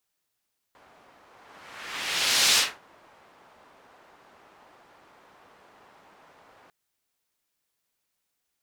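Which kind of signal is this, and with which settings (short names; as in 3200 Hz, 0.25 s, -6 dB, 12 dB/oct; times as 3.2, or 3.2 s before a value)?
whoosh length 5.95 s, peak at 1.82, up 1.37 s, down 0.25 s, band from 910 Hz, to 4600 Hz, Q 1, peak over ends 36 dB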